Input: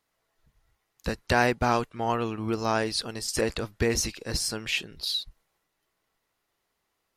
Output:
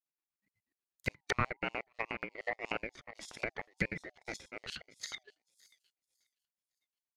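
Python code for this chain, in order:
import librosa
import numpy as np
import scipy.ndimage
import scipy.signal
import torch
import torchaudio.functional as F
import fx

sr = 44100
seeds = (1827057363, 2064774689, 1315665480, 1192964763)

p1 = fx.band_swap(x, sr, width_hz=1000)
p2 = fx.spec_erase(p1, sr, start_s=4.17, length_s=0.29, low_hz=1800.0, high_hz=4200.0)
p3 = p2 + fx.echo_wet_highpass(p2, sr, ms=558, feedback_pct=36, hz=2200.0, wet_db=-21.0, dry=0)
p4 = fx.power_curve(p3, sr, exponent=1.4)
p5 = fx.level_steps(p4, sr, step_db=18)
p6 = p4 + F.gain(torch.from_numpy(p5), -1.0).numpy()
p7 = fx.high_shelf(p6, sr, hz=8000.0, db=7.5)
p8 = fx.filter_lfo_highpass(p7, sr, shape='square', hz=8.3, low_hz=470.0, high_hz=6800.0, q=0.9)
p9 = fx.peak_eq(p8, sr, hz=62.0, db=13.5, octaves=0.21)
p10 = fx.env_lowpass_down(p9, sr, base_hz=950.0, full_db=-28.0)
p11 = fx.ring_lfo(p10, sr, carrier_hz=810.0, swing_pct=20, hz=1.8)
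y = F.gain(torch.from_numpy(p11), 1.0).numpy()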